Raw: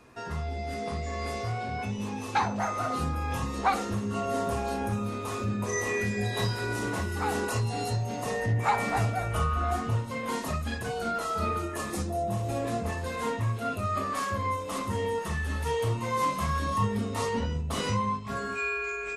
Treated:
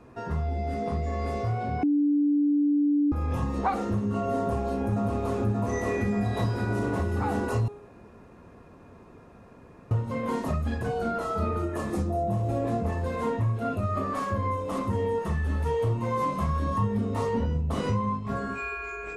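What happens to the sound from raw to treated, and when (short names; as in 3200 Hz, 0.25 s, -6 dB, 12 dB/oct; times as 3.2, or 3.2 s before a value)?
1.83–3.12 bleep 291 Hz -21 dBFS
4.38–5.48 echo throw 0.58 s, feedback 70%, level -3 dB
7.68–9.91 room tone
whole clip: tilt shelf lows +7.5 dB, about 1500 Hz; de-hum 411.5 Hz, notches 33; compressor 2:1, threshold -24 dBFS; gain -1 dB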